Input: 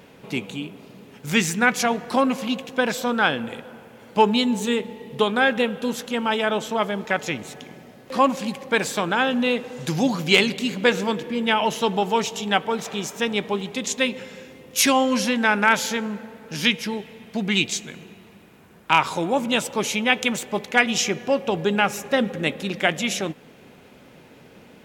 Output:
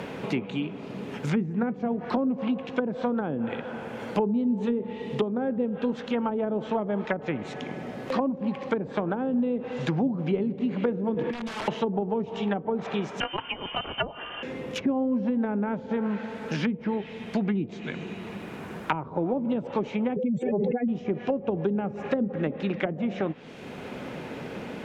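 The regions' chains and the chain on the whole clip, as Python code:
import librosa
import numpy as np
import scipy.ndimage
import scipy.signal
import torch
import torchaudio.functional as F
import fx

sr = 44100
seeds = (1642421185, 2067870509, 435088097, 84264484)

y = fx.chain(x, sr, fx.highpass(hz=57.0, slope=12),
    fx.overflow_wrap(gain_db=18.5),
    fx.over_compress(threshold_db=-30.0, ratio=-0.5), at=(11.14, 11.68))
y = fx.chain(y, sr, fx.freq_invert(carrier_hz=3300),
    fx.transformer_sat(knee_hz=690.0), at=(13.2, 14.43))
y = fx.chain(y, sr, fx.spec_expand(power=3.0),
    fx.transient(attack_db=-1, sustain_db=5),
    fx.pre_swell(db_per_s=45.0), at=(20.16, 20.88))
y = fx.env_lowpass_down(y, sr, base_hz=410.0, full_db=-18.0)
y = fx.high_shelf(y, sr, hz=6900.0, db=-8.5)
y = fx.band_squash(y, sr, depth_pct=70)
y = y * 10.0 ** (-1.5 / 20.0)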